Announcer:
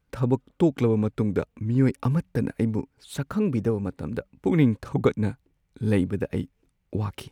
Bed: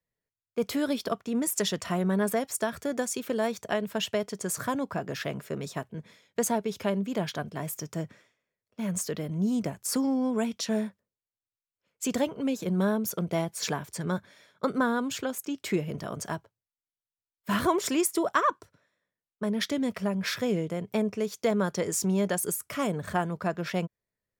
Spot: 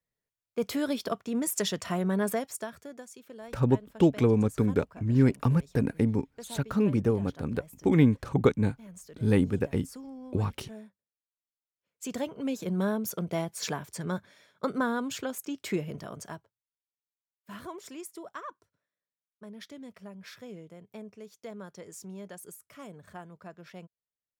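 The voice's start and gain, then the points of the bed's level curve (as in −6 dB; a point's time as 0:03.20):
3.40 s, −1.0 dB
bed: 0:02.32 −1.5 dB
0:03.07 −17 dB
0:11.14 −17 dB
0:12.52 −2.5 dB
0:15.81 −2.5 dB
0:17.13 −16.5 dB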